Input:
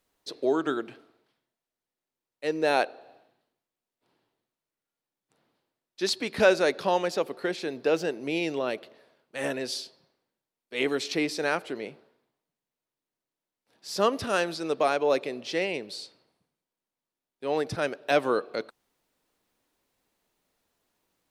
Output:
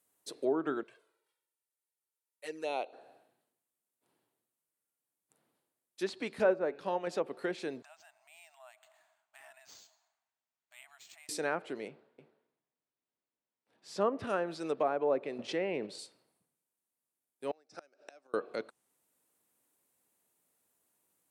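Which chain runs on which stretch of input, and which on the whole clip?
0:00.83–0:02.93: high-pass filter 730 Hz 6 dB per octave + flanger swept by the level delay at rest 2.2 ms, full sweep at −26.5 dBFS
0:06.34–0:07.07: hum removal 142 Hz, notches 20 + expander for the loud parts, over −31 dBFS
0:07.82–0:11.29: downward compressor 2.5 to 1, threshold −49 dBFS + linear-phase brick-wall high-pass 610 Hz + linearly interpolated sample-rate reduction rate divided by 4×
0:11.88–0:14.01: low-pass filter 3,900 Hz + single-tap delay 302 ms −6.5 dB
0:15.38–0:15.99: low-pass filter 2,500 Hz 6 dB per octave + noise gate −43 dBFS, range −12 dB + envelope flattener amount 50%
0:17.51–0:18.34: gate with flip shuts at −19 dBFS, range −28 dB + loudspeaker in its box 400–6,700 Hz, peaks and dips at 440 Hz −6 dB, 1,000 Hz −9 dB, 1,900 Hz −6 dB, 3,200 Hz −10 dB, 5,400 Hz +9 dB
whole clip: treble cut that deepens with the level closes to 1,200 Hz, closed at −20.5 dBFS; high-pass filter 96 Hz; high shelf with overshoot 6,700 Hz +10 dB, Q 1.5; level −5.5 dB

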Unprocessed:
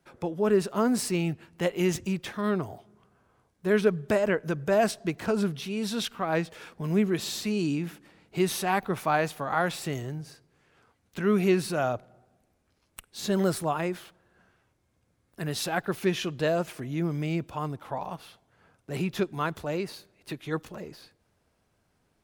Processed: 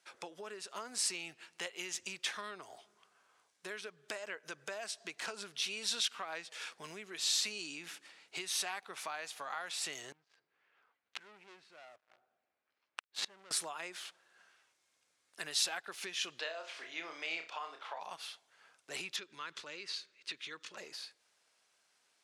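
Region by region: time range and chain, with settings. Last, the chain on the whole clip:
0:10.12–0:13.51: low-pass filter 2,100 Hz + leveller curve on the samples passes 3 + gate with flip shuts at −25 dBFS, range −30 dB
0:16.39–0:18.00: three-way crossover with the lows and the highs turned down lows −21 dB, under 370 Hz, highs −21 dB, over 5,300 Hz + flutter between parallel walls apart 5.3 metres, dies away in 0.28 s
0:19.16–0:20.77: low-pass filter 5,600 Hz + parametric band 730 Hz −15 dB 0.5 octaves + downward compressor 3 to 1, threshold −38 dBFS
whole clip: bass and treble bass −7 dB, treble −2 dB; downward compressor 12 to 1, threshold −34 dBFS; meter weighting curve ITU-R 468; level −3.5 dB

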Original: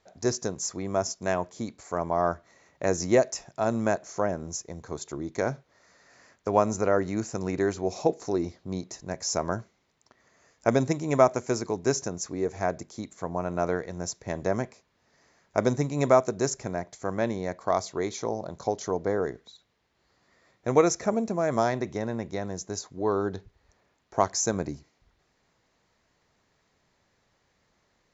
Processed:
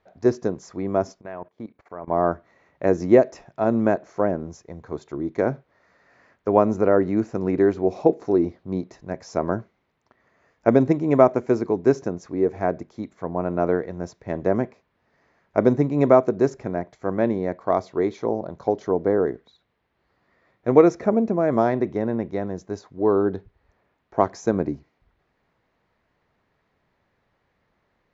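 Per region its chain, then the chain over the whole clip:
0:01.21–0:02.08: low-pass filter 5,900 Hz + bass and treble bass −4 dB, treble −10 dB + output level in coarse steps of 18 dB
whole clip: dynamic equaliser 310 Hz, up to +8 dB, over −38 dBFS, Q 0.73; low-pass filter 2,600 Hz 12 dB per octave; level +1 dB

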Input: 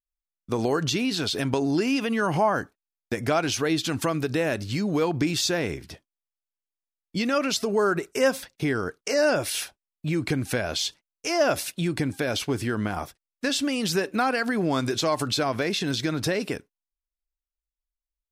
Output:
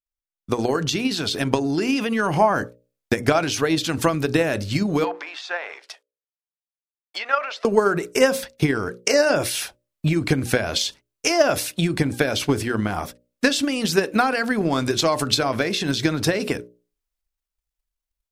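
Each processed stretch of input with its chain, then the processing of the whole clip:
0:05.04–0:07.65: mu-law and A-law mismatch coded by A + treble cut that deepens with the level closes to 2,000 Hz, closed at −23.5 dBFS + high-pass filter 690 Hz 24 dB per octave
whole clip: automatic gain control gain up to 10 dB; mains-hum notches 60/120/180/240/300/360/420/480/540/600 Hz; transient designer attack +9 dB, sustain +5 dB; level −7 dB

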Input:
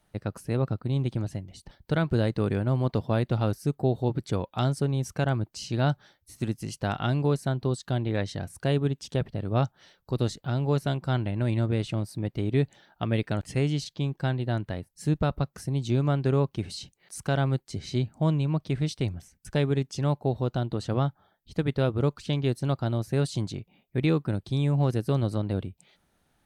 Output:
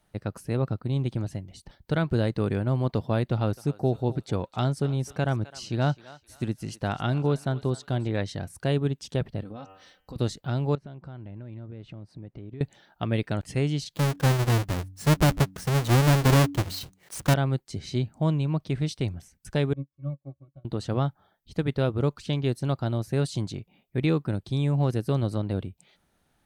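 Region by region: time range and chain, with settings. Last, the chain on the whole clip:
0:03.31–0:08.12: high-shelf EQ 5,800 Hz −4 dB + feedback echo with a high-pass in the loop 259 ms, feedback 37%, high-pass 760 Hz, level −15 dB
0:09.42–0:10.16: comb filter 3.9 ms, depth 67% + hum removal 95.73 Hz, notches 34 + downward compressor 10 to 1, threshold −36 dBFS
0:10.75–0:12.61: downward compressor 5 to 1, threshold −38 dBFS + head-to-tape spacing loss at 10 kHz 26 dB
0:13.93–0:17.34: each half-wave held at its own peak + hum removal 94.58 Hz, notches 3
0:19.73–0:20.65: gain on one half-wave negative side −7 dB + resonances in every octave C#, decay 0.12 s + expander for the loud parts 2.5 to 1, over −47 dBFS
whole clip: no processing

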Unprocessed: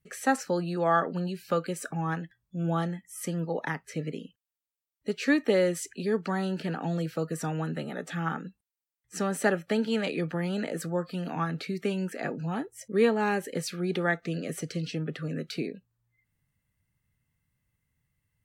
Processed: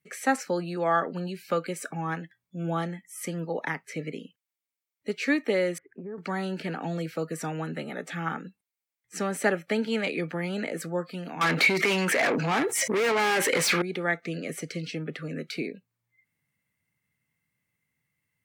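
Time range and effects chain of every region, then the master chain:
0:05.78–0:06.18: Butterworth low-pass 1,500 Hz + downward compressor 5 to 1, threshold −33 dBFS
0:11.41–0:13.82: mid-hump overdrive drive 32 dB, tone 4,900 Hz, clips at −13 dBFS + hard clipping −17 dBFS + envelope flattener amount 70%
whole clip: high-pass filter 170 Hz; parametric band 2,200 Hz +9 dB 0.24 octaves; speech leveller within 3 dB 0.5 s; level −2.5 dB

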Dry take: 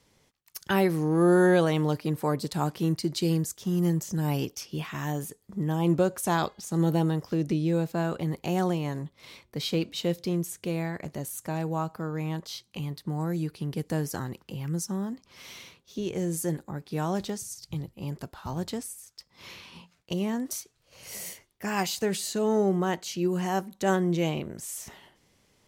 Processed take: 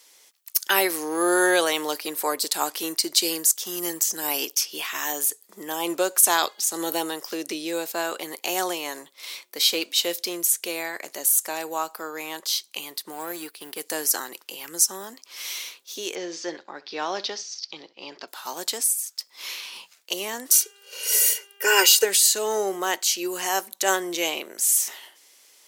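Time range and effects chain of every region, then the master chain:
0:13.12–0:13.81: mu-law and A-law mismatch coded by A + parametric band 6,100 Hz −6.5 dB 0.64 octaves
0:16.15–0:18.28: Butterworth low-pass 5,500 Hz 48 dB per octave + flutter between parallel walls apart 11.3 metres, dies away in 0.21 s
0:20.52–0:22.03: comb filter 2.1 ms, depth 73% + hum with harmonics 400 Hz, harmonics 8, −69 dBFS −3 dB per octave + hollow resonant body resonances 430/1,500/2,800 Hz, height 12 dB, ringing for 30 ms
whole clip: high-pass filter 300 Hz 24 dB per octave; spectral tilt +4 dB per octave; level +5 dB

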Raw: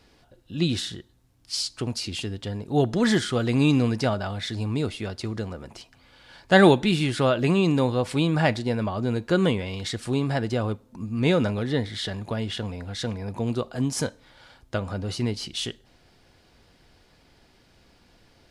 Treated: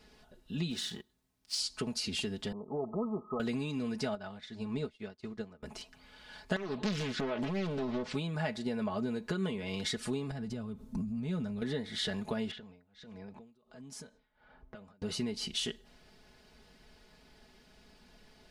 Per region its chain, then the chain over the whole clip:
0:00.70–0:01.59: mu-law and A-law mismatch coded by A + high-pass filter 93 Hz 6 dB per octave
0:02.52–0:03.40: spectral tilt +3.5 dB per octave + downward compressor 3 to 1, threshold −25 dBFS + linear-phase brick-wall low-pass 1,300 Hz
0:04.15–0:05.63: high-frequency loss of the air 57 metres + expander for the loud parts 2.5 to 1, over −44 dBFS
0:06.56–0:08.15: low-pass filter 6,100 Hz 24 dB per octave + downward compressor 10 to 1, threshold −20 dBFS + highs frequency-modulated by the lows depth 0.84 ms
0:10.31–0:11.62: bass and treble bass +14 dB, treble +4 dB + downward compressor 8 to 1, threshold −27 dBFS
0:12.51–0:15.02: low-pass that shuts in the quiet parts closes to 1,200 Hz, open at −23 dBFS + downward compressor 16 to 1, threshold −40 dBFS + amplitude tremolo 1.4 Hz, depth 93%
whole clip: downward compressor 12 to 1, threshold −28 dBFS; comb filter 4.7 ms, depth 71%; level −4 dB

